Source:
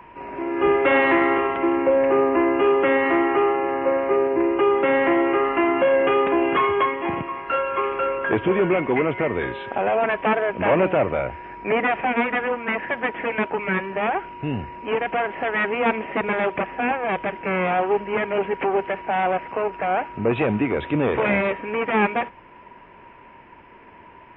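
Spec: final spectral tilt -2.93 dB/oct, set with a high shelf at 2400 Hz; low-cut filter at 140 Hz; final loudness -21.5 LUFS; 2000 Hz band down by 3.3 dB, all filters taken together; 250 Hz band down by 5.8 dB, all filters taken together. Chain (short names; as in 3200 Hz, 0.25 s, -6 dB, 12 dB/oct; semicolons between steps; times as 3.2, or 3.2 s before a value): HPF 140 Hz; bell 250 Hz -8.5 dB; bell 2000 Hz -7.5 dB; high shelf 2400 Hz +7.5 dB; gain +2.5 dB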